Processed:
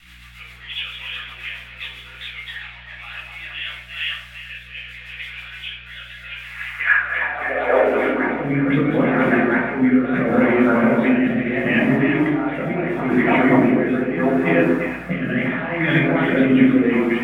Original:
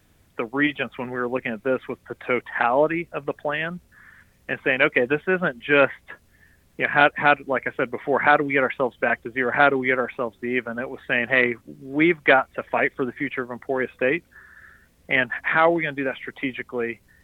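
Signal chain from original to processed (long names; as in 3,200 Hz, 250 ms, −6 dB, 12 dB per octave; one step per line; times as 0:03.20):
delay that plays each chunk backwards 318 ms, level −7 dB
compressor whose output falls as the input rises −29 dBFS, ratio −1
noise in a band 610–2,200 Hz −43 dBFS
high-pass filter sweep 3,400 Hz → 170 Hz, 0:06.28–0:08.46
mains hum 60 Hz, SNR 31 dB
on a send: echo through a band-pass that steps 115 ms, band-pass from 300 Hz, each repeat 1.4 octaves, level 0 dB
on the sum: rotating-speaker cabinet horn 7.5 Hz, later 0.75 Hz, at 0:03.17
rectangular room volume 740 cubic metres, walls furnished, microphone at 6.9 metres
level −1 dB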